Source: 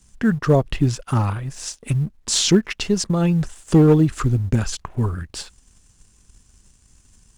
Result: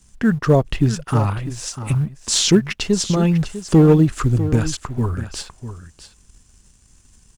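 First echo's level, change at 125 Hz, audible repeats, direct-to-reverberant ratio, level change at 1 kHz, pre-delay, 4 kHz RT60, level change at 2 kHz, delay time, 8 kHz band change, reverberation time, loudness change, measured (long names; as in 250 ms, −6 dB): −12.5 dB, +1.5 dB, 1, no reverb audible, +1.5 dB, no reverb audible, no reverb audible, +1.5 dB, 648 ms, +1.5 dB, no reverb audible, +1.5 dB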